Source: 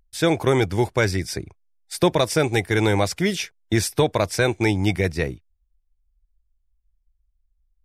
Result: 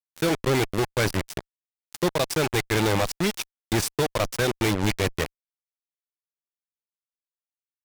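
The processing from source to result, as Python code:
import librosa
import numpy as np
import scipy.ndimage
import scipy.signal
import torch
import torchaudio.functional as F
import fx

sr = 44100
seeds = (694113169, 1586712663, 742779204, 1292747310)

y = fx.dereverb_blind(x, sr, rt60_s=0.65)
y = fx.cheby_harmonics(y, sr, harmonics=(4, 7), levels_db=(-39, -16), full_scale_db=-7.5)
y = fx.fuzz(y, sr, gain_db=41.0, gate_db=-41.0)
y = y * librosa.db_to_amplitude(-5.5)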